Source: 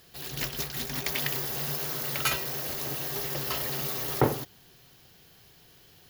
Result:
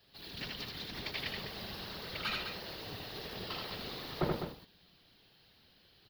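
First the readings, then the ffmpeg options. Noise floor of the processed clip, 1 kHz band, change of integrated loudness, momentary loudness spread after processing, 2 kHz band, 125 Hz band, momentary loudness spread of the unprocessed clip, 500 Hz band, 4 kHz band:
-66 dBFS, -8.5 dB, -10.5 dB, 7 LU, -6.5 dB, -9.5 dB, 5 LU, -8.5 dB, -5.0 dB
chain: -filter_complex "[0:a]afftfilt=real='hypot(re,im)*cos(2*PI*random(0))':imag='hypot(re,im)*sin(2*PI*random(1))':win_size=512:overlap=0.75,highshelf=f=5.4k:t=q:w=3:g=-8.5,aecho=1:1:78.72|204.1:0.708|0.398,acrossover=split=200|860|7300[a][b][c][d];[d]alimiter=level_in=19dB:limit=-24dB:level=0:latency=1:release=303,volume=-19dB[e];[a][b][c][e]amix=inputs=4:normalize=0,volume=-4.5dB"

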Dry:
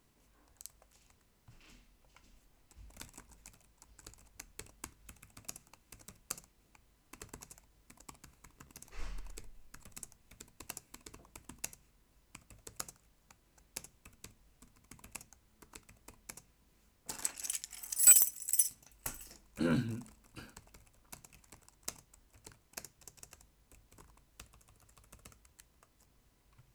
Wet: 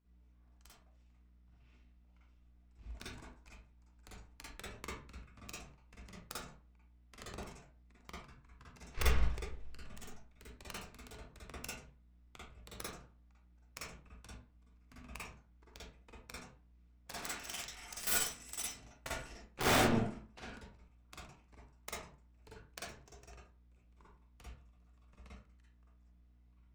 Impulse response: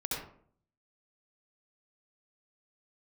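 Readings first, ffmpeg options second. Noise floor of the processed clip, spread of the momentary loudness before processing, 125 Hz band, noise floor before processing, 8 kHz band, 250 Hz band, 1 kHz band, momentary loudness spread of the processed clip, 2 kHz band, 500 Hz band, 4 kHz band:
-66 dBFS, 26 LU, +4.0 dB, -71 dBFS, -12.0 dB, 0.0 dB, +10.5 dB, 24 LU, +6.5 dB, +7.0 dB, +5.0 dB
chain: -filter_complex "[0:a]agate=range=-18dB:threshold=-54dB:ratio=16:detection=peak,lowpass=3.8k,equalizer=f=140:t=o:w=2.5:g=-3.5,asplit=2[a][b];[b]asoftclip=type=tanh:threshold=-37.5dB,volume=-7dB[c];[a][c]amix=inputs=2:normalize=0,aeval=exprs='val(0)+0.000178*(sin(2*PI*60*n/s)+sin(2*PI*2*60*n/s)/2+sin(2*PI*3*60*n/s)/3+sin(2*PI*4*60*n/s)/4+sin(2*PI*5*60*n/s)/5)':c=same,aeval=exprs='(mod(28.2*val(0)+1,2)-1)/28.2':c=same,aeval=exprs='0.0355*(cos(1*acos(clip(val(0)/0.0355,-1,1)))-cos(1*PI/2))+0.01*(cos(7*acos(clip(val(0)/0.0355,-1,1)))-cos(7*PI/2))':c=same,flanger=delay=4.9:depth=3.2:regen=79:speed=1.5:shape=sinusoidal[d];[1:a]atrim=start_sample=2205,asetrate=66150,aresample=44100[e];[d][e]afir=irnorm=-1:irlink=0,volume=9.5dB"

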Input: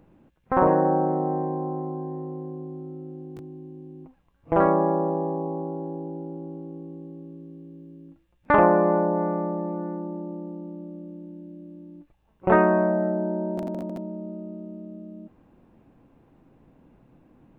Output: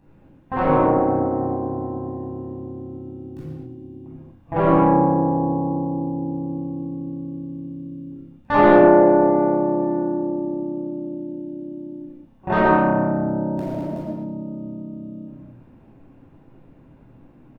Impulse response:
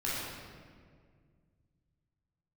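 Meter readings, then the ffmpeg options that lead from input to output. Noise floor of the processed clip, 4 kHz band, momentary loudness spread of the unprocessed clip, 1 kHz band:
-51 dBFS, n/a, 22 LU, +4.5 dB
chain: -filter_complex "[0:a]asplit=5[a][b][c][d][e];[b]adelay=101,afreqshift=-33,volume=-12.5dB[f];[c]adelay=202,afreqshift=-66,volume=-20dB[g];[d]adelay=303,afreqshift=-99,volume=-27.6dB[h];[e]adelay=404,afreqshift=-132,volume=-35.1dB[i];[a][f][g][h][i]amix=inputs=5:normalize=0,acontrast=70[j];[1:a]atrim=start_sample=2205,afade=t=out:st=0.32:d=0.01,atrim=end_sample=14553[k];[j][k]afir=irnorm=-1:irlink=0,volume=-8dB"

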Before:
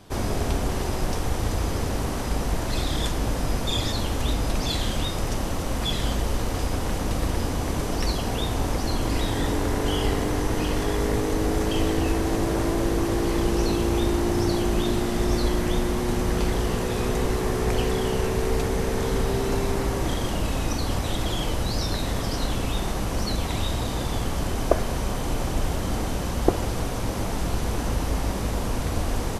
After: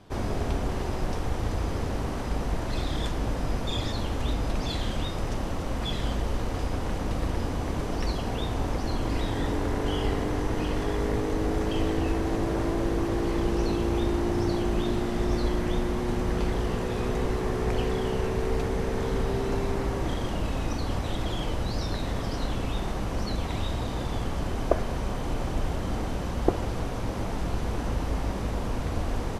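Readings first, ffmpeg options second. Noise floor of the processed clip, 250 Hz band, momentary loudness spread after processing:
-31 dBFS, -3.0 dB, 4 LU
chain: -af "lowpass=f=3.2k:p=1,volume=-3dB"

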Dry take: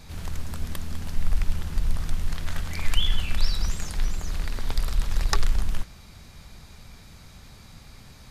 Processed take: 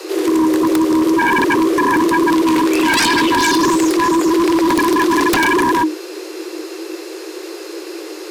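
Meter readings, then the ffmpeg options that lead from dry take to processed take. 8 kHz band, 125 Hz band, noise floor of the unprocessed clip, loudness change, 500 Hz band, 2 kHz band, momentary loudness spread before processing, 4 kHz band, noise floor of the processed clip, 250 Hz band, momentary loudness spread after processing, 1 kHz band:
+15.0 dB, -3.0 dB, -48 dBFS, +17.0 dB, +29.0 dB, +22.0 dB, 21 LU, +11.5 dB, -31 dBFS, +29.0 dB, 16 LU, +26.0 dB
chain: -af "afreqshift=310,aeval=exprs='0.531*sin(PI/2*7.94*val(0)/0.531)':c=same,volume=-5dB"

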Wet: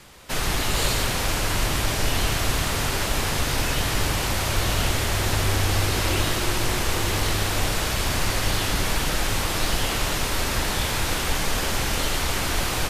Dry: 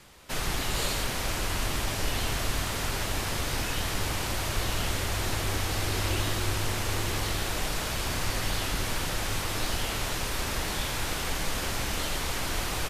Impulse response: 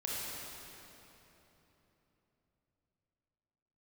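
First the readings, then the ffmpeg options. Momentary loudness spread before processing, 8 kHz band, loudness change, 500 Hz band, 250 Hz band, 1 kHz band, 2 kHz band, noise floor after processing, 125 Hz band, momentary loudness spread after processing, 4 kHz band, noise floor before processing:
2 LU, +6.0 dB, +6.0 dB, +6.5 dB, +6.5 dB, +6.0 dB, +6.0 dB, -26 dBFS, +6.5 dB, 2 LU, +6.0 dB, -32 dBFS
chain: -filter_complex "[0:a]asplit=2[a][b];[1:a]atrim=start_sample=2205,adelay=94[c];[b][c]afir=irnorm=-1:irlink=0,volume=-11.5dB[d];[a][d]amix=inputs=2:normalize=0,volume=5.5dB"

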